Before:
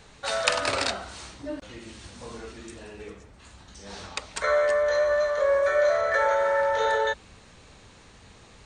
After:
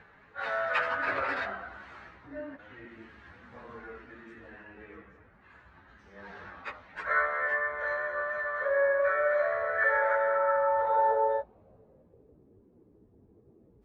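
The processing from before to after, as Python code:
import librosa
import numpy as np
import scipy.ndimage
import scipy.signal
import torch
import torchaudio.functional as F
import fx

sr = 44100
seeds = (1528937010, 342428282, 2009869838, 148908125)

y = fx.filter_sweep_lowpass(x, sr, from_hz=1700.0, to_hz=360.0, start_s=6.36, end_s=7.76, q=2.8)
y = fx.stretch_vocoder_free(y, sr, factor=1.6)
y = fx.highpass(y, sr, hz=90.0, slope=6)
y = y * librosa.db_to_amplitude(-4.5)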